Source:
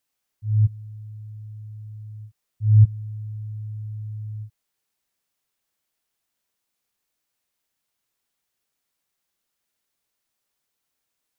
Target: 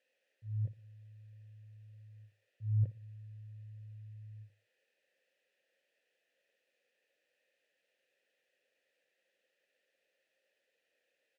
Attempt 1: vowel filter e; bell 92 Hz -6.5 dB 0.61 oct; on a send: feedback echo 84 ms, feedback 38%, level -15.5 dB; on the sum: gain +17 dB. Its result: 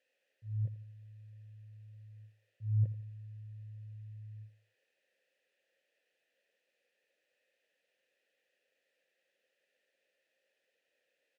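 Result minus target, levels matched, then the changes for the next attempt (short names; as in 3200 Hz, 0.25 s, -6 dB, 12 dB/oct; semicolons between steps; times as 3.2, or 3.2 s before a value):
echo 26 ms late
change: feedback echo 58 ms, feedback 38%, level -15.5 dB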